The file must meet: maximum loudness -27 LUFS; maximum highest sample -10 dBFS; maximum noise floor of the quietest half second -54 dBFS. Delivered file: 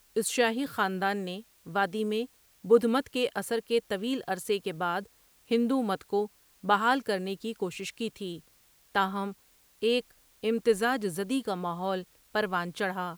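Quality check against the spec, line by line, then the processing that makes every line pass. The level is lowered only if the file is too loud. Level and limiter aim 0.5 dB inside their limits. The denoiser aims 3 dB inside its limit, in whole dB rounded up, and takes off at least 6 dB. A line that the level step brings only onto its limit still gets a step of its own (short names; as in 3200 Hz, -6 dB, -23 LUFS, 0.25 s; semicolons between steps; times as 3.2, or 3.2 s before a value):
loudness -30.0 LUFS: OK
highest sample -9.5 dBFS: fail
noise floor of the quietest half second -63 dBFS: OK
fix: limiter -10.5 dBFS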